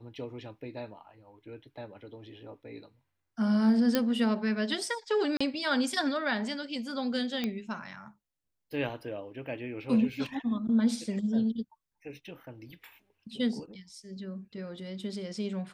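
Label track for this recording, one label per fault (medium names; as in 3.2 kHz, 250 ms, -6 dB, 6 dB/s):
3.950000	3.950000	pop -11 dBFS
5.370000	5.410000	dropout 35 ms
7.440000	7.440000	pop -18 dBFS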